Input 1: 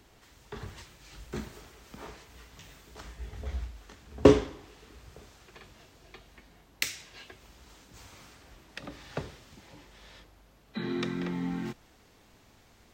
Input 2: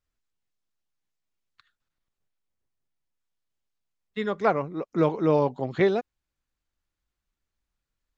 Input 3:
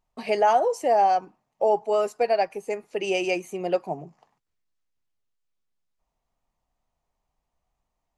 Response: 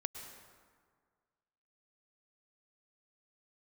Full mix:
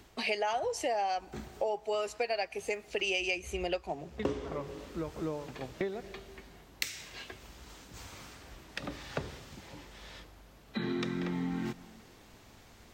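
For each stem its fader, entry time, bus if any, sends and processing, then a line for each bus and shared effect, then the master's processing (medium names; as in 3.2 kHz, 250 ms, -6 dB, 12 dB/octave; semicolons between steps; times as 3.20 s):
+2.0 dB, 0.00 s, send -14 dB, auto duck -11 dB, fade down 0.25 s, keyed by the third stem
-9.0 dB, 0.00 s, send -9 dB, tremolo saw down 3.1 Hz, depth 100%
-1.0 dB, 0.00 s, send -24 dB, frequency weighting D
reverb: on, RT60 1.8 s, pre-delay 97 ms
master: compression 4:1, threshold -31 dBFS, peak gain reduction 13 dB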